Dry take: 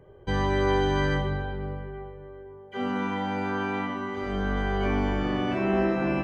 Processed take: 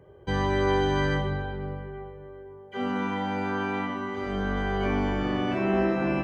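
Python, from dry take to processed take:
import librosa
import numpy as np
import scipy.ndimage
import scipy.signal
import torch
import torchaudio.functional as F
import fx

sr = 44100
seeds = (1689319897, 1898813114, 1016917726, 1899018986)

y = scipy.signal.sosfilt(scipy.signal.butter(2, 50.0, 'highpass', fs=sr, output='sos'), x)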